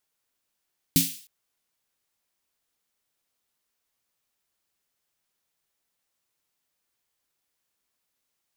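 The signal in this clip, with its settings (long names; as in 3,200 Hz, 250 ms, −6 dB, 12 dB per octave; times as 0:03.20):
synth snare length 0.31 s, tones 170 Hz, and 270 Hz, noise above 2,600 Hz, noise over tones 0 dB, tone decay 0.25 s, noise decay 0.48 s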